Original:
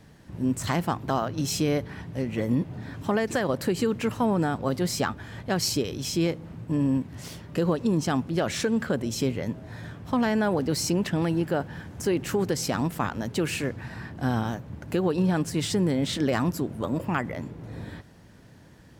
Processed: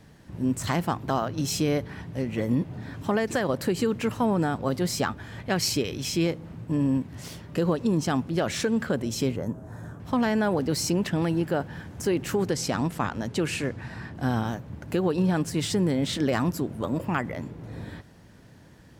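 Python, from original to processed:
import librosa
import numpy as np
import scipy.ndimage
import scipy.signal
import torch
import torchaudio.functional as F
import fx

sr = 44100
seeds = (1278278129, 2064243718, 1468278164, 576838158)

y = fx.peak_eq(x, sr, hz=2300.0, db=5.5, octaves=0.77, at=(5.39, 6.23))
y = fx.band_shelf(y, sr, hz=3100.0, db=-13.5, octaves=1.7, at=(9.36, 10.0))
y = fx.lowpass(y, sr, hz=11000.0, slope=12, at=(12.48, 14.15))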